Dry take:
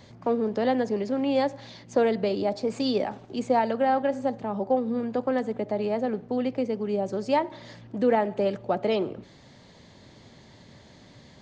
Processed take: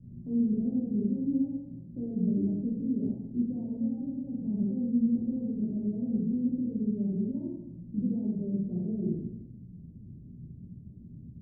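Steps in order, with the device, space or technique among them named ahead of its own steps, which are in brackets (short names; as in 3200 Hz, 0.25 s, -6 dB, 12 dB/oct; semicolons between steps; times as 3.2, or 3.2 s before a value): club heard from the street (limiter -20.5 dBFS, peak gain reduction 9 dB; LPF 240 Hz 24 dB/oct; reverb RT60 0.90 s, pre-delay 12 ms, DRR -7 dB)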